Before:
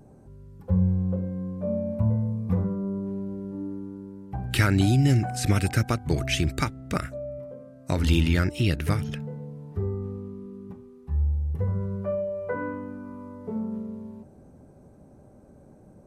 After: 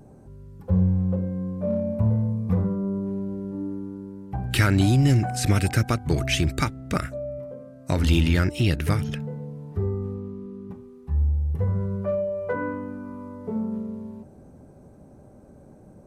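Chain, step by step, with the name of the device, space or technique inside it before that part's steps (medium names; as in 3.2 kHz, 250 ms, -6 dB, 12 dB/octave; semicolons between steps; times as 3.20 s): 10.14–10.71 s: treble shelf 9.2 kHz -11 dB; parallel distortion (in parallel at -8.5 dB: hard clipper -22.5 dBFS, distortion -9 dB)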